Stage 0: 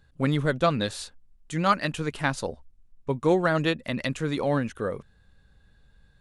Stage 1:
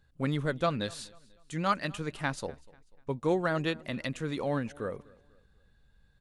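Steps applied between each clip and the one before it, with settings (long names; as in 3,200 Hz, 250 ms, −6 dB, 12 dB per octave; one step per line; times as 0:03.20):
repeating echo 245 ms, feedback 39%, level −23.5 dB
level −6 dB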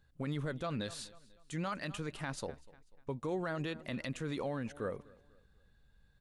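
brickwall limiter −25.5 dBFS, peak gain reduction 11.5 dB
level −2.5 dB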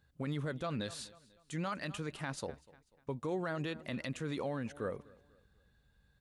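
high-pass filter 45 Hz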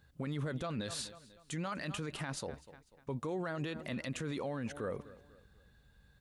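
brickwall limiter −35.5 dBFS, peak gain reduction 8 dB
level +5.5 dB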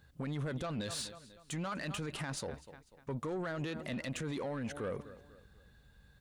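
soft clipping −34 dBFS, distortion −16 dB
level +2.5 dB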